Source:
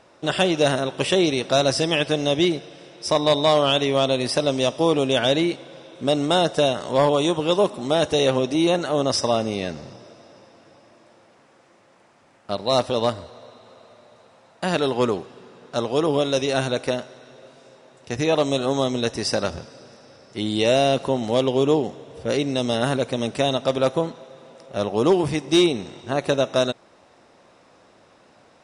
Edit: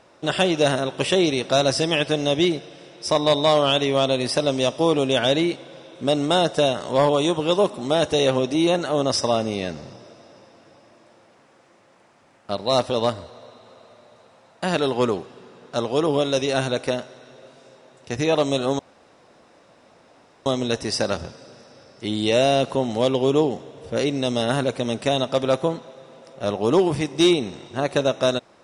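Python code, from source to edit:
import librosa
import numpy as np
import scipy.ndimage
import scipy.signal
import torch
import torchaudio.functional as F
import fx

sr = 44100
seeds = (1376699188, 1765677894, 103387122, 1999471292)

y = fx.edit(x, sr, fx.insert_room_tone(at_s=18.79, length_s=1.67), tone=tone)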